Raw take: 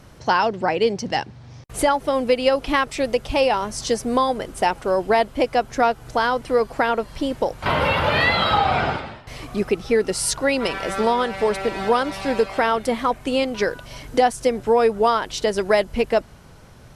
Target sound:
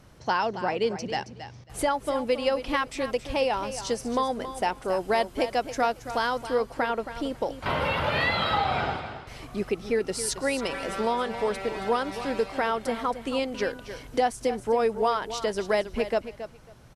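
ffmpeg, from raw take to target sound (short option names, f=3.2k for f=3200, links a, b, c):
-filter_complex "[0:a]asettb=1/sr,asplit=3[a][b][c];[a]atrim=end=4.884[d];[b]atrim=start=4.88:end=6.47,asetpts=PTS-STARTPTS,afade=t=in:d=0.004:c=qsin,afade=t=out:st=1.586:d=0.004:c=qsin,highshelf=f=4k:g=7[e];[c]atrim=start=6.466[f];[d][e]acrossfade=d=0.004:c1=hsin:c2=qsin[g];[g][f]acrossfade=d=0.004:c1=qsin:c2=hsin,aecho=1:1:273|546:0.266|0.0452,volume=-7dB"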